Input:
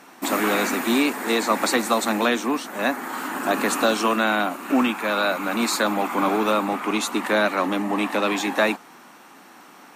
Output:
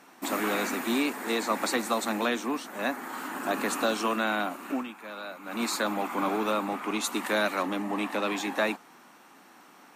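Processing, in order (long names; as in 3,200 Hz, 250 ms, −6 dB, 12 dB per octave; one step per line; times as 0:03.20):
0:04.66–0:05.62: duck −10.5 dB, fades 0.18 s
0:07.04–0:07.63: high-shelf EQ 3,800 Hz +7 dB
level −7 dB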